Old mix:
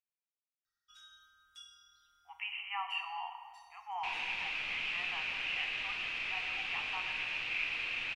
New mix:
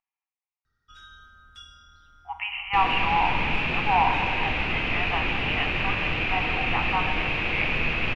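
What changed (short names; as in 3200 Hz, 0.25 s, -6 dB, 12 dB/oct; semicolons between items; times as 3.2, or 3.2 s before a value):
second sound: entry -1.30 s; master: remove pre-emphasis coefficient 0.97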